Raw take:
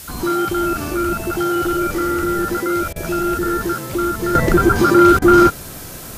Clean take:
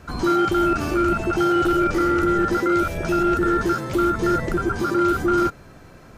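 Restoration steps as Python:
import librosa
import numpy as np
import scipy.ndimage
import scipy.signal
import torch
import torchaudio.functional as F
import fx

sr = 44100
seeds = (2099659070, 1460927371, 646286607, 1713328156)

y = fx.fix_interpolate(x, sr, at_s=(2.93, 5.19), length_ms=28.0)
y = fx.noise_reduce(y, sr, print_start_s=5.63, print_end_s=6.13, reduce_db=11.0)
y = fx.fix_level(y, sr, at_s=4.35, step_db=-9.5)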